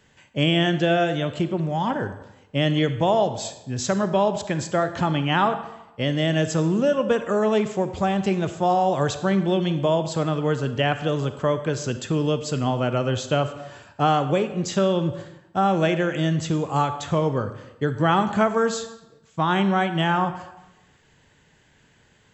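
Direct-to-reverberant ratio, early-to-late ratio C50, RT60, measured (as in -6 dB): 10.0 dB, 11.0 dB, 0.95 s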